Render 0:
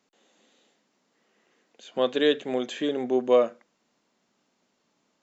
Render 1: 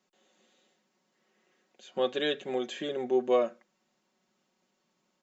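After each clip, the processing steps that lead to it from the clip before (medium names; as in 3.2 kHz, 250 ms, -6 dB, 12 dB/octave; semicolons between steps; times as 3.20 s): comb 5.4 ms; trim -5.5 dB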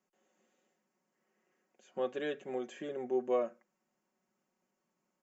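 peaking EQ 3.8 kHz -14 dB 0.68 oct; trim -6 dB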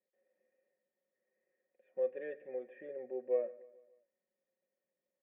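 cascade formant filter e; feedback delay 145 ms, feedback 53%, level -21 dB; trim +3.5 dB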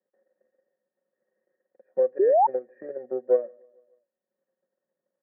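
transient shaper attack +9 dB, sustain -5 dB; painted sound rise, 2.19–2.47 s, 360–940 Hz -24 dBFS; Chebyshev band-pass 120–1700 Hz, order 4; trim +6.5 dB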